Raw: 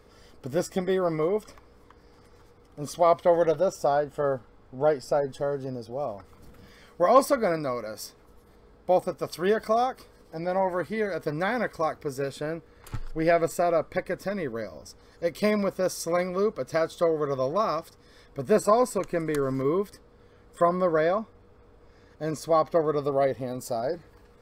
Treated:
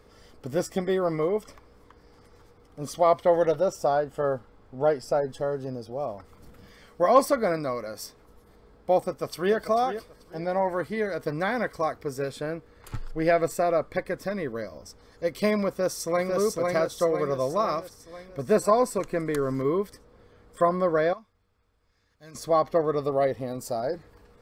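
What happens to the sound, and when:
9.06–9.55 s: echo throw 440 ms, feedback 25%, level -11.5 dB
15.69–16.32 s: echo throw 500 ms, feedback 55%, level -2.5 dB
21.13–22.35 s: amplifier tone stack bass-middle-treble 5-5-5

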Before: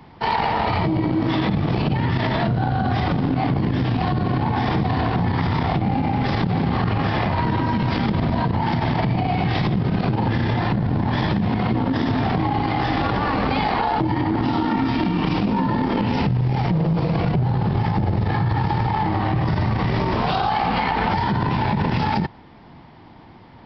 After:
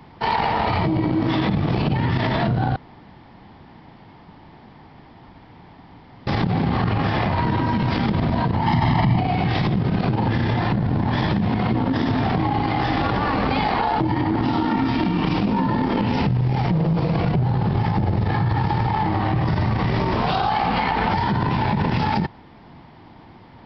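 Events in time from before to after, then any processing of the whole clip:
2.76–6.27 s: room tone
8.66–9.19 s: comb 1 ms, depth 63%

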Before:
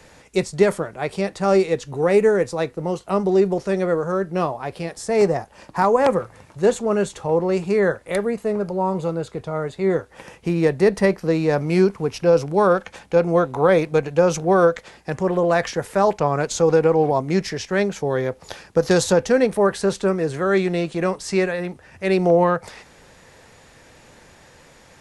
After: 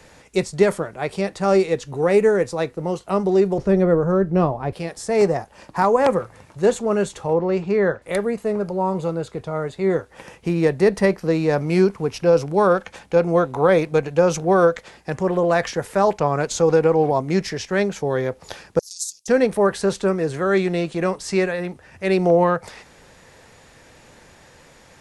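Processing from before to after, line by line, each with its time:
3.58–4.73 s: tilt EQ -3 dB/octave
7.33–8.02 s: distance through air 130 m
18.79–19.28 s: inverse Chebyshev high-pass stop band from 1.7 kHz, stop band 60 dB

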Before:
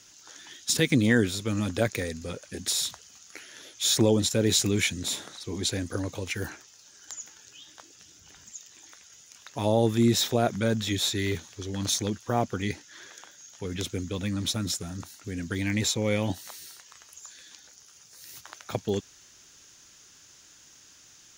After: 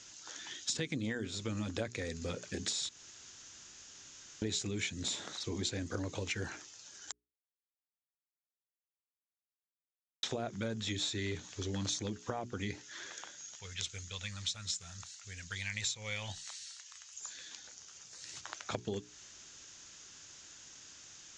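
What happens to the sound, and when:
2.89–4.42 s: room tone
7.12–10.23 s: mute
13.55–17.20 s: amplifier tone stack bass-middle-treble 10-0-10
whole clip: compression 6:1, threshold -34 dBFS; elliptic low-pass 7.7 kHz, stop band 50 dB; hum notches 60/120/180/240/300/360/420 Hz; trim +1 dB

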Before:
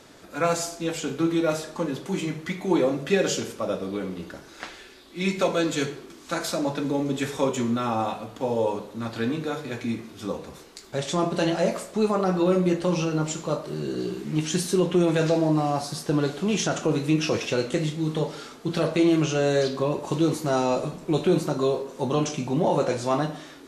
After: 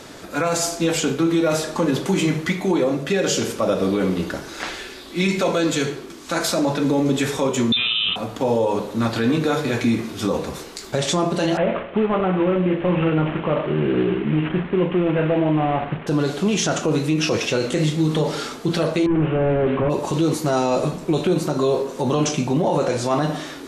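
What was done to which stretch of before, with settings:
7.72–8.16 s: frequency inversion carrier 3.8 kHz
11.57–16.07 s: CVSD coder 16 kbps
19.06–19.90 s: one-bit delta coder 16 kbps, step -39.5 dBFS
whole clip: gain riding within 4 dB 0.5 s; peak limiter -19 dBFS; trim +8 dB

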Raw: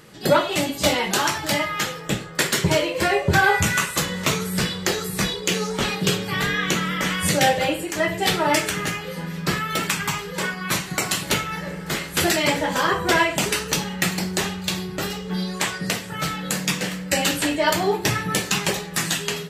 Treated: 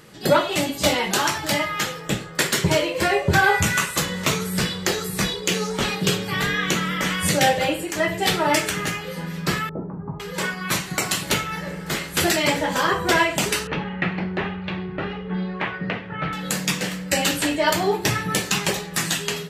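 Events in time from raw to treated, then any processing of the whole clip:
9.69–10.20 s: Bessel low-pass 550 Hz, order 6
13.67–16.33 s: low-pass 2.6 kHz 24 dB/octave

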